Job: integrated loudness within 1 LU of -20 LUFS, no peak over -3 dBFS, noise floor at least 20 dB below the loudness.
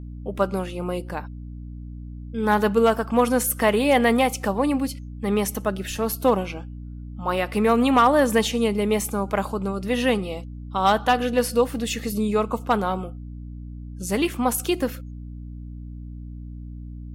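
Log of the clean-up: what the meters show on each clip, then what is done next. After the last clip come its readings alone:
hum 60 Hz; harmonics up to 300 Hz; hum level -34 dBFS; loudness -22.5 LUFS; peak -7.5 dBFS; loudness target -20.0 LUFS
-> notches 60/120/180/240/300 Hz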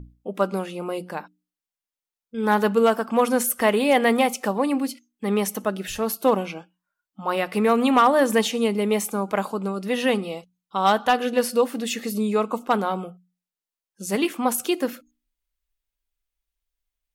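hum none; loudness -23.0 LUFS; peak -7.5 dBFS; loudness target -20.0 LUFS
-> gain +3 dB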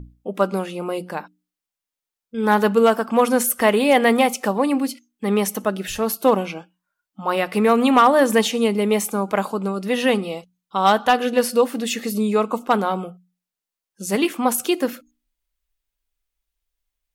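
loudness -20.0 LUFS; peak -4.5 dBFS; noise floor -88 dBFS

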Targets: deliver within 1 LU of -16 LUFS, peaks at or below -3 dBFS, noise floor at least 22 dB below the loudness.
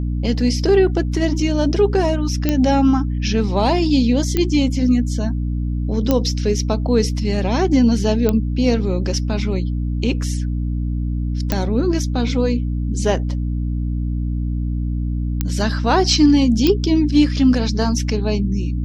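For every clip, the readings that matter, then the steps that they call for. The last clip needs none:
clicks 7; hum 60 Hz; harmonics up to 300 Hz; hum level -18 dBFS; loudness -18.5 LUFS; peak -1.5 dBFS; loudness target -16.0 LUFS
-> de-click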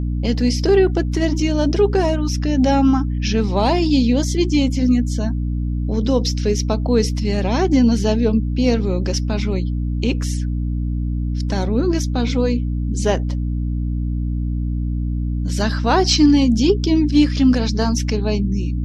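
clicks 0; hum 60 Hz; harmonics up to 300 Hz; hum level -18 dBFS
-> notches 60/120/180/240/300 Hz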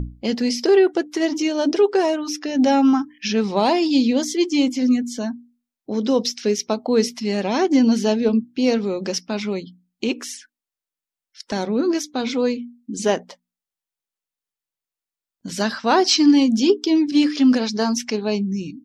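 hum none; loudness -20.0 LUFS; peak -5.0 dBFS; loudness target -16.0 LUFS
-> gain +4 dB; limiter -3 dBFS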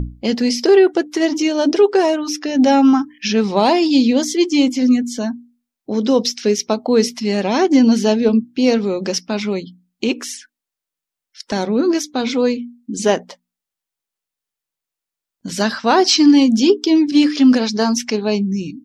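loudness -16.0 LUFS; peak -3.0 dBFS; noise floor -85 dBFS

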